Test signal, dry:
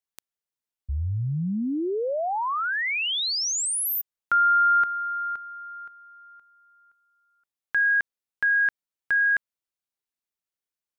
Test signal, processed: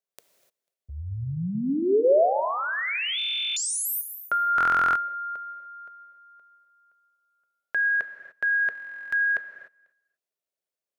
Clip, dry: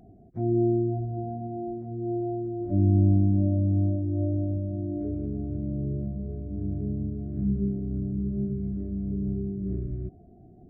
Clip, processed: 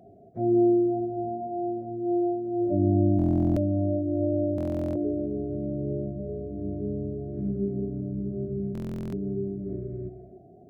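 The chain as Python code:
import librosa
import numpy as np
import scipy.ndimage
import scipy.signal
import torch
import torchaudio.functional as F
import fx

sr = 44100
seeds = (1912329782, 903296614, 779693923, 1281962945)

y = fx.dynamic_eq(x, sr, hz=270.0, q=7.2, threshold_db=-46.0, ratio=4.0, max_db=6)
y = scipy.signal.sosfilt(scipy.signal.butter(2, 100.0, 'highpass', fs=sr, output='sos'), y)
y = fx.band_shelf(y, sr, hz=520.0, db=11.5, octaves=1.0)
y = fx.notch(y, sr, hz=470.0, q=12.0)
y = fx.echo_feedback(y, sr, ms=247, feedback_pct=25, wet_db=-24.0)
y = fx.rev_gated(y, sr, seeds[0], gate_ms=320, shape='flat', drr_db=7.5)
y = fx.buffer_glitch(y, sr, at_s=(3.17, 4.56, 8.73), block=1024, repeats=16)
y = F.gain(torch.from_numpy(y), -2.5).numpy()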